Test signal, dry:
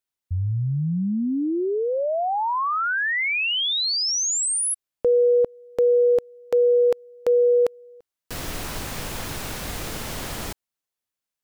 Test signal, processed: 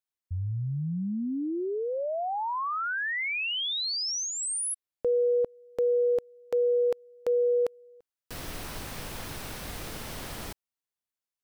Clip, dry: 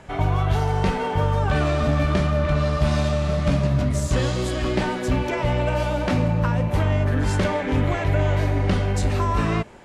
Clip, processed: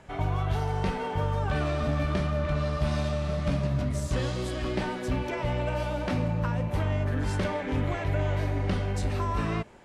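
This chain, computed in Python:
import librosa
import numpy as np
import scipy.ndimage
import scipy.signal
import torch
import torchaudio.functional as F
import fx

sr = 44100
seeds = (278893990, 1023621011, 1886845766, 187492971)

y = fx.dynamic_eq(x, sr, hz=7000.0, q=5.7, threshold_db=-54.0, ratio=4.0, max_db=-4)
y = y * 10.0 ** (-7.0 / 20.0)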